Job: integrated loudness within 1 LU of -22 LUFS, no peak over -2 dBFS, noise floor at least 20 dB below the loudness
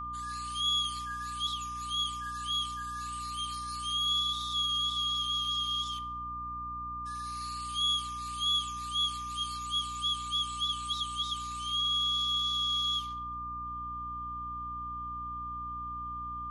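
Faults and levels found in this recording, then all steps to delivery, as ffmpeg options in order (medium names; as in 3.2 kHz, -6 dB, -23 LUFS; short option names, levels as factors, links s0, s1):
hum 60 Hz; highest harmonic 300 Hz; hum level -45 dBFS; steady tone 1.2 kHz; tone level -36 dBFS; loudness -31.5 LUFS; peak level -20.5 dBFS; loudness target -22.0 LUFS
-> -af "bandreject=f=60:t=h:w=4,bandreject=f=120:t=h:w=4,bandreject=f=180:t=h:w=4,bandreject=f=240:t=h:w=4,bandreject=f=300:t=h:w=4"
-af "bandreject=f=1200:w=30"
-af "volume=2.99"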